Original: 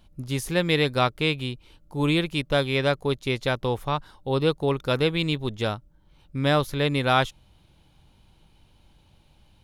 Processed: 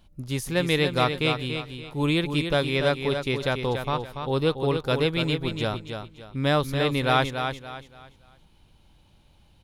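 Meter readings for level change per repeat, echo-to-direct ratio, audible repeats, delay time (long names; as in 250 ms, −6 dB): −10.0 dB, −6.5 dB, 3, 286 ms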